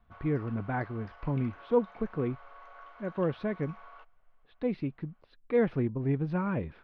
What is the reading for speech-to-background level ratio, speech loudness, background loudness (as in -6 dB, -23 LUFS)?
20.0 dB, -32.0 LUFS, -52.0 LUFS